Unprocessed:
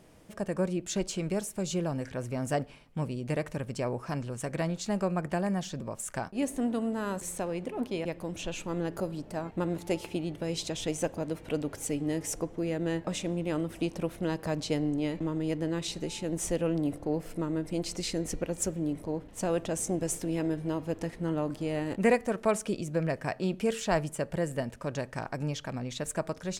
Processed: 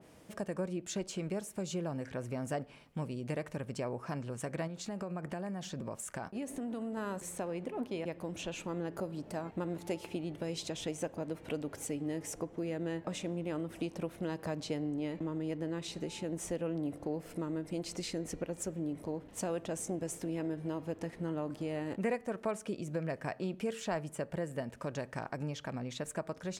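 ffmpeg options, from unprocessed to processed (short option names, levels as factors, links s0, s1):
-filter_complex "[0:a]asettb=1/sr,asplit=3[s0][s1][s2];[s0]atrim=end=4.674[s3];[s1]atrim=start=4.67:end=6.97,asetpts=PTS-STARTPTS,afade=t=in:d=0.004:c=qsin,afade=t=out:st=2.296:d=0.004:c=qsin,acompressor=threshold=0.0251:ratio=6:attack=3.2:release=140:knee=1:detection=peak[s4];[s2]atrim=start=6.966[s5];[s3][s4]acrossfade=d=0.004:c1=hsin:c2=qsin[s6];[s6][s5]acrossfade=d=0.004:c1=qsin:c2=hsin,highpass=f=99:p=1,acompressor=threshold=0.0141:ratio=2,adynamicequalizer=threshold=0.002:dfrequency=2800:dqfactor=0.7:tfrequency=2800:tqfactor=0.7:attack=5:release=100:ratio=0.375:range=2.5:mode=cutabove:tftype=highshelf"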